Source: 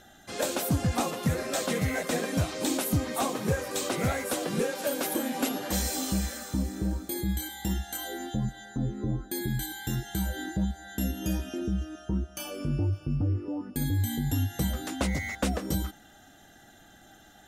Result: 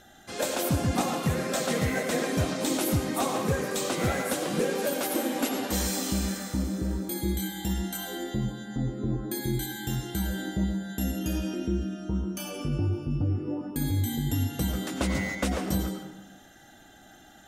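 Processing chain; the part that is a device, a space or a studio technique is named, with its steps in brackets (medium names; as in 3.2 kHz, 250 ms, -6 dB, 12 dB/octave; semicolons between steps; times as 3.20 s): filtered reverb send (on a send: high-pass 180 Hz 24 dB/octave + low-pass 8.8 kHz 12 dB/octave + reverberation RT60 1.0 s, pre-delay 83 ms, DRR 3 dB)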